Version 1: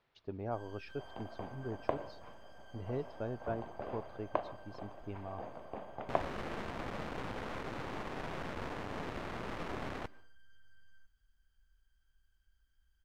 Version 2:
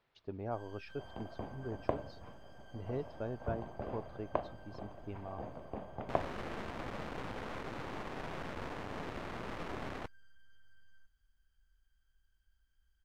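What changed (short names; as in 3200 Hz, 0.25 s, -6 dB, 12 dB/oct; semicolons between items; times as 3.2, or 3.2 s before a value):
second sound: add low shelf 310 Hz +11.5 dB; reverb: off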